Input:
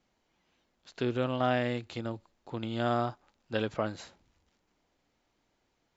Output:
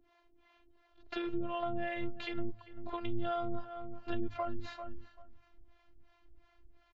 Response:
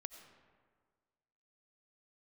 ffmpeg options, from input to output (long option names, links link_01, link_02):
-filter_complex "[0:a]afftfilt=real='hypot(re,im)*cos(PI*b)':imag='0':win_size=512:overlap=0.75,asplit=2[link_01][link_02];[link_02]asoftclip=type=hard:threshold=-31dB,volume=-4.5dB[link_03];[link_01][link_03]amix=inputs=2:normalize=0,aemphasis=mode=reproduction:type=50fm,acrossover=split=430[link_04][link_05];[link_04]aeval=exprs='val(0)*(1-1/2+1/2*cos(2*PI*3.3*n/s))':channel_layout=same[link_06];[link_05]aeval=exprs='val(0)*(1-1/2-1/2*cos(2*PI*3.3*n/s))':channel_layout=same[link_07];[link_06][link_07]amix=inputs=2:normalize=0,asplit=2[link_08][link_09];[link_09]adelay=336,lowpass=frequency=2400:poles=1,volume=-18.5dB,asplit=2[link_10][link_11];[link_11]adelay=336,lowpass=frequency=2400:poles=1,volume=0.17[link_12];[link_10][link_12]amix=inputs=2:normalize=0[link_13];[link_08][link_13]amix=inputs=2:normalize=0,acompressor=threshold=-47dB:ratio=3,lowpass=4100,bandreject=frequency=52.73:width_type=h:width=4,bandreject=frequency=105.46:width_type=h:width=4,bandreject=frequency=158.19:width_type=h:width=4,bandreject=frequency=210.92:width_type=h:width=4,bandreject=frequency=263.65:width_type=h:width=4,bandreject=frequency=316.38:width_type=h:width=4,atempo=0.86,asubboost=boost=6.5:cutoff=140,volume=11dB"